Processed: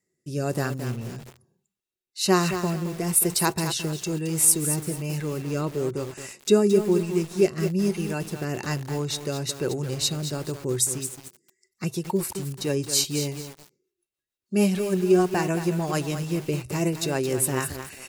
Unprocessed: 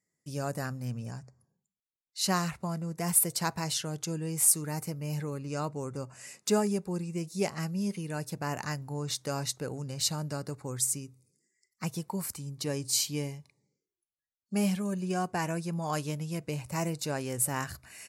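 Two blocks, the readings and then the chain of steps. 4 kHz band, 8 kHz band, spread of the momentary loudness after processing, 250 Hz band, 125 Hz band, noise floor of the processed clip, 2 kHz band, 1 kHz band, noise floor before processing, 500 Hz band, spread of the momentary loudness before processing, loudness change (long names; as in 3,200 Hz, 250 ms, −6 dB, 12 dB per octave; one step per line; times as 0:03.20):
+5.5 dB, +5.0 dB, 11 LU, +8.0 dB, +6.0 dB, −85 dBFS, +6.0 dB, +4.0 dB, below −85 dBFS, +11.0 dB, 10 LU, +6.5 dB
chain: rotating-speaker cabinet horn 1.1 Hz, later 6.7 Hz, at 0:10.26
hollow resonant body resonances 370/2,700/3,800 Hz, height 14 dB, ringing for 85 ms
feedback echo at a low word length 220 ms, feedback 35%, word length 7 bits, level −8.5 dB
level +7 dB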